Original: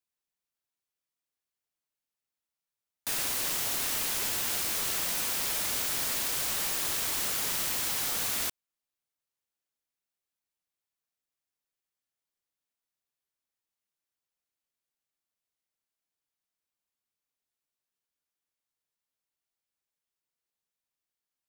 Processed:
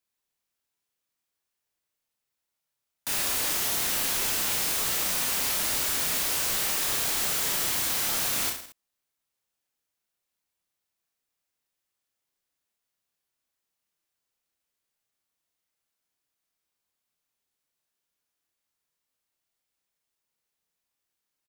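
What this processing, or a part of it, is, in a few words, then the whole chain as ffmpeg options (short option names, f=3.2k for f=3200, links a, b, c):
saturation between pre-emphasis and de-emphasis: -af "highshelf=f=5.8k:g=8.5,asoftclip=type=tanh:threshold=-21.5dB,highshelf=f=5.8k:g=-8.5,aecho=1:1:30|66|109.2|161|223.2:0.631|0.398|0.251|0.158|0.1,volume=4dB"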